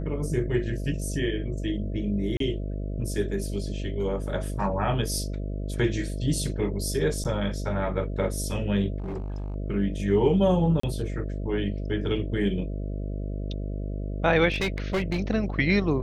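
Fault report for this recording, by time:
mains buzz 50 Hz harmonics 13 −31 dBFS
0:02.37–0:02.40: drop-out 33 ms
0:07.24–0:07.25: drop-out 8.4 ms
0:08.98–0:09.56: clipping −29 dBFS
0:10.80–0:10.83: drop-out 34 ms
0:14.51–0:15.20: clipping −22 dBFS

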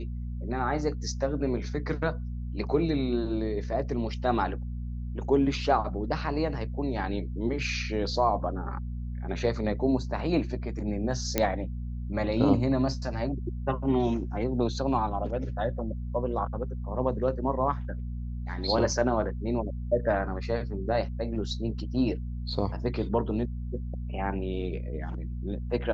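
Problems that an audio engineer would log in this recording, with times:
mains hum 60 Hz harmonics 4 −34 dBFS
0:11.38: click −8 dBFS

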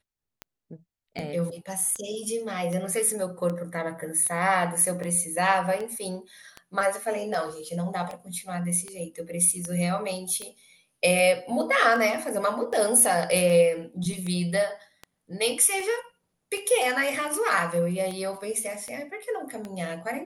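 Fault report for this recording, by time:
scratch tick 78 rpm −21 dBFS

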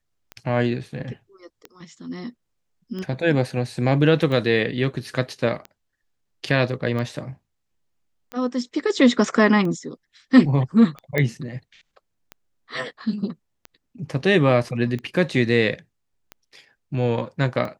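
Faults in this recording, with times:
scratch tick 45 rpm −20 dBFS
0:11.18: click −9 dBFS

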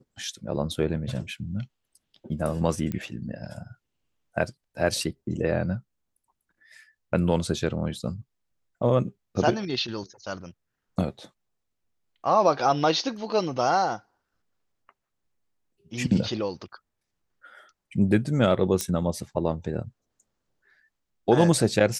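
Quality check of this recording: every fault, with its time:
0:02.92: click −18 dBFS
0:18.81: click −11 dBFS

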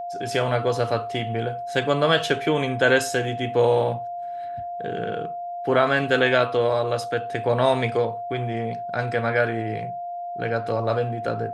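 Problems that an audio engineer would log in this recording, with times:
whistle 700 Hz −29 dBFS

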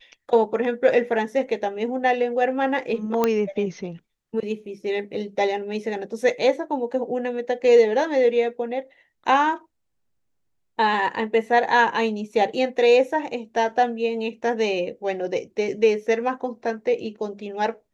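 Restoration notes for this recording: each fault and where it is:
0:03.24: click −7 dBFS

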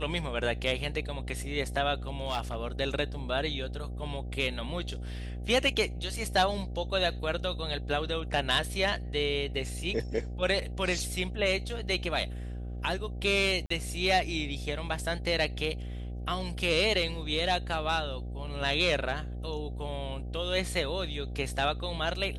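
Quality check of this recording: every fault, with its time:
mains buzz 60 Hz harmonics 13 −37 dBFS
0:02.08–0:02.63: clipping −25.5 dBFS
0:13.66–0:13.70: drop-out 44 ms

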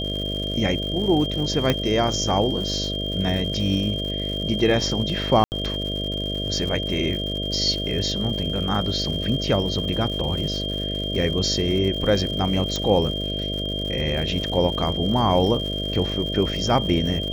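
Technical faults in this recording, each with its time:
mains buzz 50 Hz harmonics 13 −29 dBFS
surface crackle 180 per second −31 dBFS
whistle 3,200 Hz −28 dBFS
0:01.70: click −6 dBFS
0:05.44–0:05.52: drop-out 79 ms
0:12.76: click −12 dBFS

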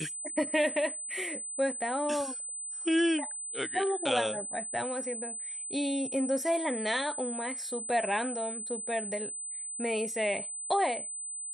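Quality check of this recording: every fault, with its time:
whistle 8,100 Hz −36 dBFS

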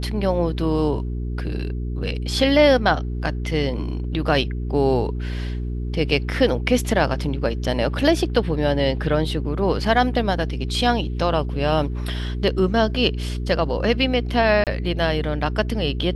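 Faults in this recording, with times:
mains hum 60 Hz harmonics 7 −26 dBFS
0:14.64–0:14.67: drop-out 28 ms

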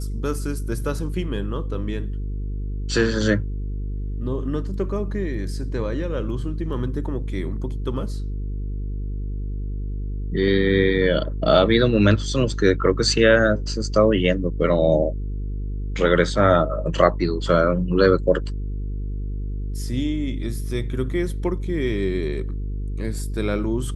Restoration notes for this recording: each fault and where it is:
mains buzz 50 Hz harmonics 9 −27 dBFS

